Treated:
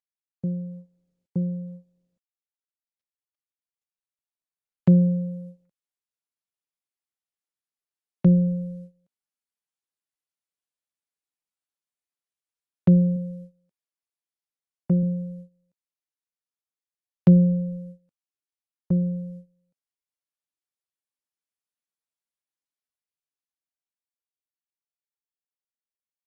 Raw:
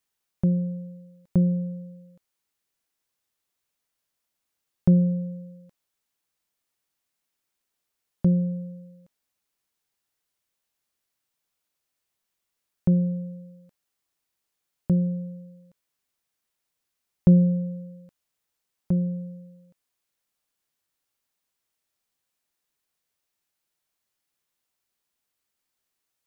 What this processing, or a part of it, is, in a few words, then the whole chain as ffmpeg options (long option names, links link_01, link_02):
video call: -filter_complex "[0:a]asettb=1/sr,asplit=3[link_01][link_02][link_03];[link_01]atrim=end=13.164[link_04];[link_02]atrim=start=13.16:end=15.03,asetpts=PTS-STARTPTS,afade=type=in:duration=0.004:curve=qsin,afade=type=out:start_time=1.866:duration=0.004:curve=qsin,highpass=frequency=110:poles=1[link_05];[link_03]atrim=start=15.026[link_06];[link_04][link_05]acrossfade=duration=0.004:curve1=hsin:curve2=qsin[link_07];[link_07][link_06]acrossfade=duration=0.004:curve1=qsin:curve2=hsin,highpass=frequency=130:width=0.5412,highpass=frequency=130:width=1.3066,dynaudnorm=framelen=450:gausssize=17:maxgain=14dB,agate=range=-20dB:threshold=-35dB:ratio=16:detection=peak,volume=-5.5dB" -ar 48000 -c:a libopus -b:a 32k